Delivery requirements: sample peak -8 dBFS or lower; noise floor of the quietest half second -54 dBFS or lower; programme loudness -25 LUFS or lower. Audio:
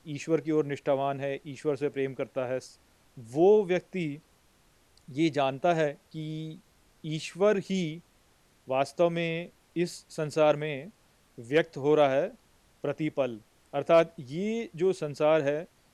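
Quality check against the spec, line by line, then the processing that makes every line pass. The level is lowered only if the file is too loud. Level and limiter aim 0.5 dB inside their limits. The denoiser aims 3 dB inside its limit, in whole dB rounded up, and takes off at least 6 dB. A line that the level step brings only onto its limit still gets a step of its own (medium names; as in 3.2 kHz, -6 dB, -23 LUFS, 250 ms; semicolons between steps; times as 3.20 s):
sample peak -12.0 dBFS: pass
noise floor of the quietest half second -64 dBFS: pass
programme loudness -29.0 LUFS: pass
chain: none needed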